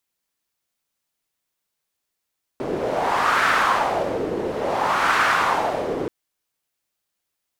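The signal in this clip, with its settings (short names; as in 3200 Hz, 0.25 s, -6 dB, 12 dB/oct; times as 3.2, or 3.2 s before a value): wind-like swept noise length 3.48 s, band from 400 Hz, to 1400 Hz, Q 2.6, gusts 2, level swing 7.5 dB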